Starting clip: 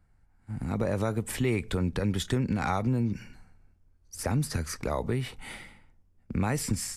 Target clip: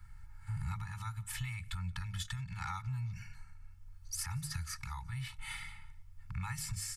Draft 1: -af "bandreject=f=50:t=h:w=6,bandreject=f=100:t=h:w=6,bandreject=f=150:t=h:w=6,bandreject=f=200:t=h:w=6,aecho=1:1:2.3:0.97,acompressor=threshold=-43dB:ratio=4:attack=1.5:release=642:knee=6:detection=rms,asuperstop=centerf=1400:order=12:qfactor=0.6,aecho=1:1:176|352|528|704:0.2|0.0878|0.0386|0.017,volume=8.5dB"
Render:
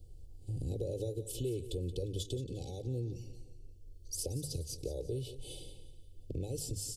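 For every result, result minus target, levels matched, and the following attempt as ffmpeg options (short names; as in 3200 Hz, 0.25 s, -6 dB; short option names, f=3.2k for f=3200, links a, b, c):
1000 Hz band -17.0 dB; echo-to-direct +12 dB
-af "bandreject=f=50:t=h:w=6,bandreject=f=100:t=h:w=6,bandreject=f=150:t=h:w=6,bandreject=f=200:t=h:w=6,aecho=1:1:2.3:0.97,acompressor=threshold=-43dB:ratio=4:attack=1.5:release=642:knee=6:detection=rms,asuperstop=centerf=430:order=12:qfactor=0.6,aecho=1:1:176|352|528|704:0.2|0.0878|0.0386|0.017,volume=8.5dB"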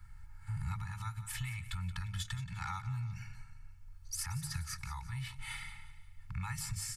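echo-to-direct +12 dB
-af "bandreject=f=50:t=h:w=6,bandreject=f=100:t=h:w=6,bandreject=f=150:t=h:w=6,bandreject=f=200:t=h:w=6,aecho=1:1:2.3:0.97,acompressor=threshold=-43dB:ratio=4:attack=1.5:release=642:knee=6:detection=rms,asuperstop=centerf=430:order=12:qfactor=0.6,aecho=1:1:176|352:0.0501|0.0221,volume=8.5dB"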